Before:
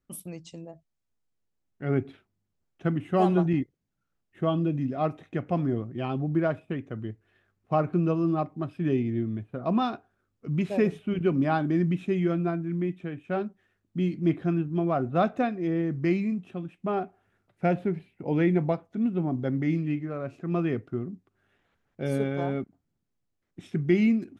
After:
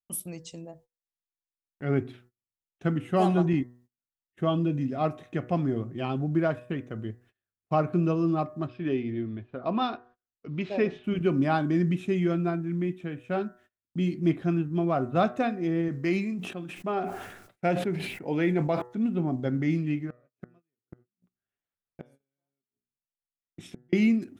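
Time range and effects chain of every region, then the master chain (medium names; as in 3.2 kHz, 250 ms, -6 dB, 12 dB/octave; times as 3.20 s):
8.67–11.04 s: low-pass 4.7 kHz 24 dB/octave + peaking EQ 150 Hz -7.5 dB 1.2 oct
15.88–18.82 s: peaking EQ 68 Hz -9.5 dB 2.8 oct + decay stretcher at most 59 dB/s
20.07–23.93 s: hum notches 60/120/180/240/300/360/420/480 Hz + inverted gate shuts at -27 dBFS, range -35 dB
whole clip: de-hum 122.2 Hz, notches 16; gate -55 dBFS, range -26 dB; treble shelf 4.6 kHz +8.5 dB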